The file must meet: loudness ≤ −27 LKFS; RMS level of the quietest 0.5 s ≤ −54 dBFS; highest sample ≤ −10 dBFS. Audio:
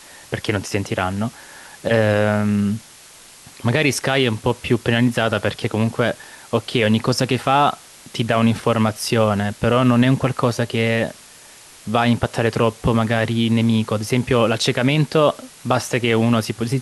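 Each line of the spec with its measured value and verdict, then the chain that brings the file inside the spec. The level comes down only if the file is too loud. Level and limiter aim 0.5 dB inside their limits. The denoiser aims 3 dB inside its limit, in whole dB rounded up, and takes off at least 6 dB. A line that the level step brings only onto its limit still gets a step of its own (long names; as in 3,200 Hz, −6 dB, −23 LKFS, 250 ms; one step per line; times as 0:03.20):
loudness −19.0 LKFS: out of spec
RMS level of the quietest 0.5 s −44 dBFS: out of spec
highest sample −4.0 dBFS: out of spec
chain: broadband denoise 6 dB, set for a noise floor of −44 dBFS
level −8.5 dB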